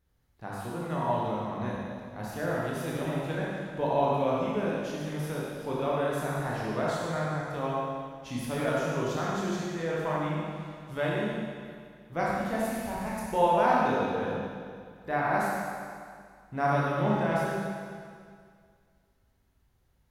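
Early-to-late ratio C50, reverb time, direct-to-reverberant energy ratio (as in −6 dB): −3.5 dB, 2.1 s, −6.0 dB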